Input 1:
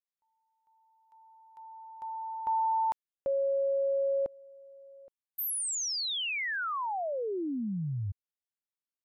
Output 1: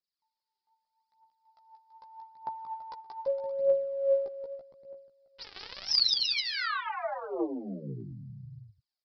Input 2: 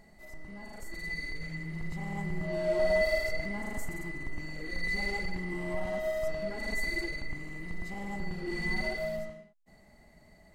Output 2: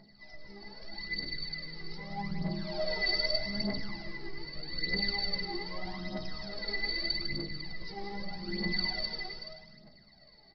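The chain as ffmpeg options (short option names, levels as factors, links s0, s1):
-filter_complex "[0:a]lowshelf=f=110:t=q:w=1.5:g=-6.5,acrossover=split=2400[s0][s1];[s1]volume=53.1,asoftclip=hard,volume=0.0188[s2];[s0][s2]amix=inputs=2:normalize=0,aexciter=amount=11.6:drive=4.1:freq=4300,asplit=2[s3][s4];[s4]adelay=15,volume=0.708[s5];[s3][s5]amix=inputs=2:normalize=0,asplit=2[s6][s7];[s7]aecho=0:1:180|333|463|573.6|667.6:0.631|0.398|0.251|0.158|0.1[s8];[s6][s8]amix=inputs=2:normalize=0,aphaser=in_gain=1:out_gain=1:delay=2.7:decay=0.63:speed=0.81:type=triangular,aresample=11025,aresample=44100,volume=0.398"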